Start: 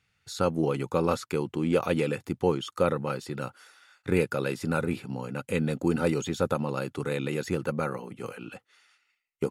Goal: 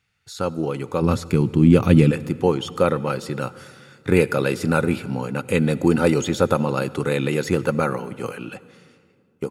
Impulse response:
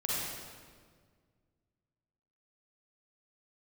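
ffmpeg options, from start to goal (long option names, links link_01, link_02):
-filter_complex "[0:a]asplit=3[link_01][link_02][link_03];[link_01]afade=type=out:start_time=1.01:duration=0.02[link_04];[link_02]asubboost=boost=10.5:cutoff=240,afade=type=in:start_time=1.01:duration=0.02,afade=type=out:start_time=2.1:duration=0.02[link_05];[link_03]afade=type=in:start_time=2.1:duration=0.02[link_06];[link_04][link_05][link_06]amix=inputs=3:normalize=0,dynaudnorm=framelen=210:gausssize=11:maxgain=8dB,asplit=2[link_07][link_08];[1:a]atrim=start_sample=2205,asetrate=31752,aresample=44100,adelay=9[link_09];[link_08][link_09]afir=irnorm=-1:irlink=0,volume=-26.5dB[link_10];[link_07][link_10]amix=inputs=2:normalize=0,volume=1dB"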